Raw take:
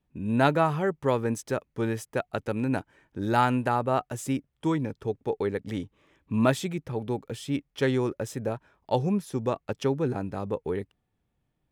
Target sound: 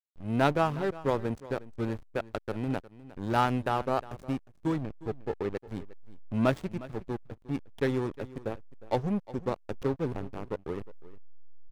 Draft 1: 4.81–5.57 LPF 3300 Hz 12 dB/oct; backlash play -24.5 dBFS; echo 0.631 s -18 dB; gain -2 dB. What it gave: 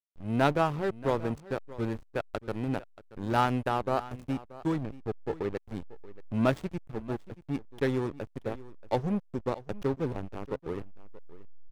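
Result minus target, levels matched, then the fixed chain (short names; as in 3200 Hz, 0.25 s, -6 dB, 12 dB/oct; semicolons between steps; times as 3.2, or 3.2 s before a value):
echo 0.273 s late
4.81–5.57 LPF 3300 Hz 12 dB/oct; backlash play -24.5 dBFS; echo 0.358 s -18 dB; gain -2 dB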